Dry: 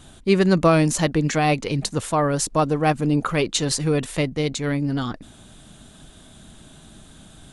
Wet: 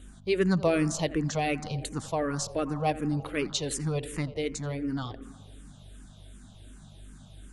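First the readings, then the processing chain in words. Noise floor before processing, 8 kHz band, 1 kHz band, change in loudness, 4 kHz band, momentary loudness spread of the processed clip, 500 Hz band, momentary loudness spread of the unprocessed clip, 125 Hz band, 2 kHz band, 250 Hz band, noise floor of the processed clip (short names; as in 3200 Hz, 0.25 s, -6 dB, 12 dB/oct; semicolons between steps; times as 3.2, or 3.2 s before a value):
-48 dBFS, -9.0 dB, -10.0 dB, -8.5 dB, -8.5 dB, 9 LU, -8.0 dB, 8 LU, -9.0 dB, -8.5 dB, -8.5 dB, -51 dBFS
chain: tape echo 85 ms, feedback 79%, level -14 dB, low-pass 1700 Hz; hum 50 Hz, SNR 18 dB; endless phaser -2.7 Hz; gain -6 dB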